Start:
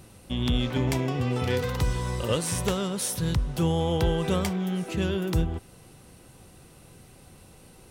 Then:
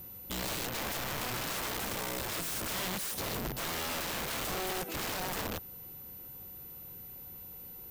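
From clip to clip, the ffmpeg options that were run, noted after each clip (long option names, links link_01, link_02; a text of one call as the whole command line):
ffmpeg -i in.wav -af "aeval=exprs='(mod(21.1*val(0)+1,2)-1)/21.1':channel_layout=same,aeval=exprs='val(0)+0.01*sin(2*PI*14000*n/s)':channel_layout=same,volume=-5dB" out.wav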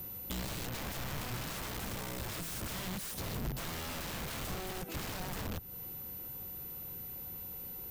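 ffmpeg -i in.wav -filter_complex "[0:a]acrossover=split=200[link_01][link_02];[link_02]acompressor=threshold=-44dB:ratio=4[link_03];[link_01][link_03]amix=inputs=2:normalize=0,volume=3.5dB" out.wav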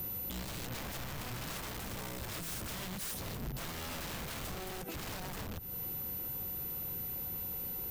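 ffmpeg -i in.wav -af "alimiter=level_in=12dB:limit=-24dB:level=0:latency=1:release=57,volume=-12dB,volume=4.5dB" out.wav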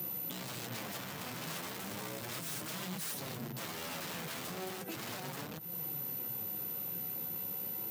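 ffmpeg -i in.wav -af "highpass=frequency=130:width=0.5412,highpass=frequency=130:width=1.3066,flanger=delay=5.6:depth=6.8:regen=41:speed=0.35:shape=triangular,volume=4.5dB" out.wav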